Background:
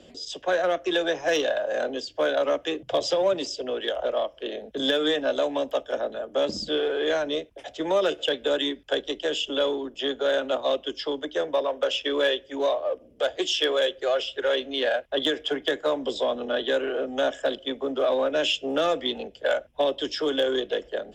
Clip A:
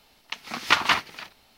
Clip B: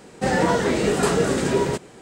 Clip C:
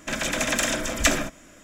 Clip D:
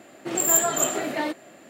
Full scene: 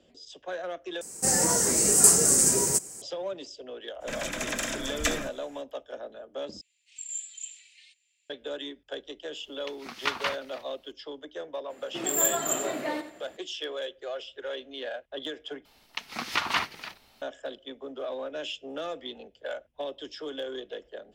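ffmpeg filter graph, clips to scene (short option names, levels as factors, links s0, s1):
-filter_complex "[4:a]asplit=2[s0][s1];[1:a]asplit=2[s2][s3];[0:a]volume=0.266[s4];[2:a]aexciter=amount=15.2:drive=7.4:freq=5500[s5];[3:a]aecho=1:1:173:0.0631[s6];[s0]asuperpass=centerf=4800:order=12:qfactor=0.71[s7];[s1]aecho=1:1:87|174|261:0.266|0.0745|0.0209[s8];[s3]alimiter=limit=0.266:level=0:latency=1:release=146[s9];[s4]asplit=4[s10][s11][s12][s13];[s10]atrim=end=1.014[s14];[s5]atrim=end=2.01,asetpts=PTS-STARTPTS,volume=0.335[s15];[s11]atrim=start=3.016:end=6.614[s16];[s7]atrim=end=1.69,asetpts=PTS-STARTPTS,volume=0.178[s17];[s12]atrim=start=8.296:end=15.654[s18];[s9]atrim=end=1.57,asetpts=PTS-STARTPTS,volume=0.891[s19];[s13]atrim=start=17.216[s20];[s6]atrim=end=1.63,asetpts=PTS-STARTPTS,volume=0.422,afade=t=in:d=0.02,afade=t=out:st=1.61:d=0.02,adelay=4000[s21];[s2]atrim=end=1.57,asetpts=PTS-STARTPTS,volume=0.335,afade=t=in:d=0.004:c=hsin,afade=t=out:st=1.566:d=0.004:c=hsin,adelay=9350[s22];[s8]atrim=end=1.69,asetpts=PTS-STARTPTS,volume=0.531,afade=t=in:d=0.02,afade=t=out:st=1.67:d=0.02,adelay=11690[s23];[s14][s15]acrossfade=d=0.004:c1=hsin:c2=hsin[s24];[s24][s16]acrossfade=d=0.004:c1=hsin:c2=hsin[s25];[s25][s17]acrossfade=d=0.004:c1=hsin:c2=hsin[s26];[s26][s18]acrossfade=d=0.004:c1=hsin:c2=hsin[s27];[s27][s19]acrossfade=d=0.004:c1=hsin:c2=hsin[s28];[s28][s20]acrossfade=d=0.004:c1=hsin:c2=hsin[s29];[s29][s21][s22][s23]amix=inputs=4:normalize=0"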